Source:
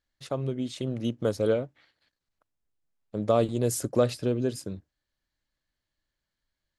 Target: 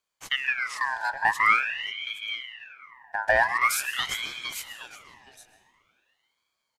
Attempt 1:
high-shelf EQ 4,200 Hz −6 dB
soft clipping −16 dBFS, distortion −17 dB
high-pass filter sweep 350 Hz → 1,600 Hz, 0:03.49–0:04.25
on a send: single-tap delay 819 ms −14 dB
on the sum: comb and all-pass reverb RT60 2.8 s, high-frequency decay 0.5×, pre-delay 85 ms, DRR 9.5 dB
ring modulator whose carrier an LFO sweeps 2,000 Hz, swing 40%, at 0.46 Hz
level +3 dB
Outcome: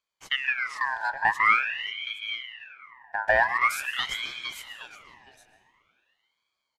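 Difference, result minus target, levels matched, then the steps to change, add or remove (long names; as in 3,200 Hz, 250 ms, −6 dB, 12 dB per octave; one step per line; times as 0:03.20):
8,000 Hz band −8.0 dB
change: high-shelf EQ 4,200 Hz +5 dB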